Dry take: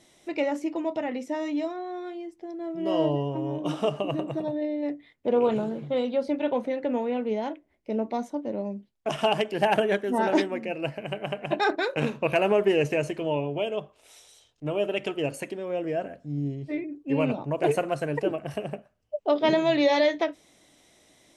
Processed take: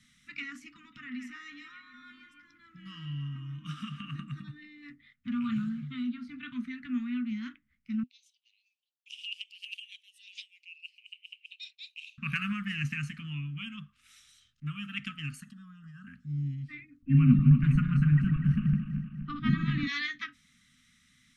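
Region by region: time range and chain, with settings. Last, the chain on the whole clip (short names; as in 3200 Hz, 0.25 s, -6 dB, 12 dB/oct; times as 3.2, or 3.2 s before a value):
0.76–4.15 notches 60/120/180/240/300/360/420 Hz + compressor 1.5:1, threshold -32 dBFS + delay with a stepping band-pass 0.161 s, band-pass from 2500 Hz, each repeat -0.7 oct, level -4 dB
5.96–6.43 high shelf 2500 Hz -8.5 dB + flutter echo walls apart 11.8 m, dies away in 0.22 s
8.03–12.18 steep high-pass 2600 Hz 72 dB/oct + high shelf 5800 Hz -11 dB
15.4–16.07 fixed phaser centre 450 Hz, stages 8 + compressor 3:1, threshold -37 dBFS
17.02–19.87 regenerating reverse delay 0.122 s, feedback 72%, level -8 dB + tilt -4.5 dB/oct
whole clip: Chebyshev band-stop 250–1200 Hz, order 5; high shelf 4800 Hz -10 dB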